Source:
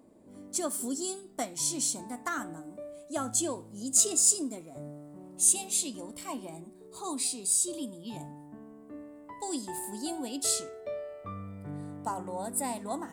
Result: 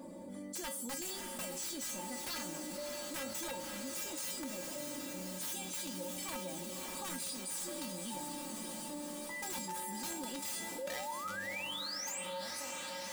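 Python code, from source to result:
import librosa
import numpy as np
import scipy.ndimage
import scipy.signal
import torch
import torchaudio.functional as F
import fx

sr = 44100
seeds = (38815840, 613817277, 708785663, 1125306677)

y = fx.fade_out_tail(x, sr, length_s=3.17)
y = fx.low_shelf(y, sr, hz=220.0, db=-4.0)
y = y + 0.68 * np.pad(y, (int(3.5 * sr / 1000.0), 0))[:len(y)]
y = fx.dynamic_eq(y, sr, hz=9700.0, q=1.0, threshold_db=-38.0, ratio=4.0, max_db=-5)
y = fx.rider(y, sr, range_db=4, speed_s=0.5)
y = fx.spec_paint(y, sr, seeds[0], shape='rise', start_s=10.78, length_s=1.43, low_hz=490.0, high_hz=8600.0, level_db=-33.0)
y = (np.mod(10.0 ** (24.5 / 20.0) * y + 1.0, 2.0) - 1.0) / 10.0 ** (24.5 / 20.0)
y = fx.comb_fb(y, sr, f0_hz=180.0, decay_s=0.22, harmonics='odd', damping=0.0, mix_pct=90)
y = fx.echo_diffused(y, sr, ms=590, feedback_pct=70, wet_db=-9)
y = fx.env_flatten(y, sr, amount_pct=70)
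y = F.gain(torch.from_numpy(y), -1.0).numpy()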